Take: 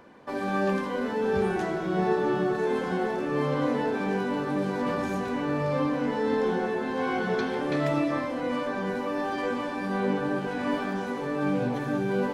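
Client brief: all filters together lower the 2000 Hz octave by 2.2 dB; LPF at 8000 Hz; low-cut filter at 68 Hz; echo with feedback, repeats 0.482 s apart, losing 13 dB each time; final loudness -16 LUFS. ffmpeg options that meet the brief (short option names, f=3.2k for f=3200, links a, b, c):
-af "highpass=68,lowpass=8k,equalizer=f=2k:t=o:g=-3,aecho=1:1:482|964|1446:0.224|0.0493|0.0108,volume=12dB"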